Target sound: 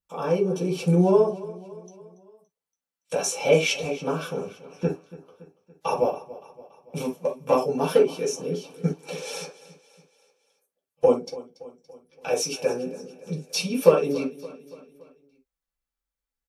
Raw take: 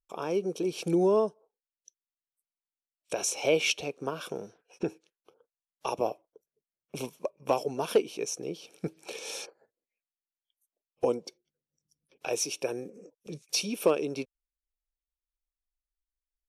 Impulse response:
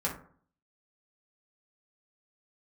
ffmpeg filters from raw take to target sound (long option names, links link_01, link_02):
-filter_complex "[0:a]aecho=1:1:284|568|852|1136:0.126|0.0655|0.034|0.0177[link_01];[1:a]atrim=start_sample=2205,atrim=end_sample=3528[link_02];[link_01][link_02]afir=irnorm=-1:irlink=0"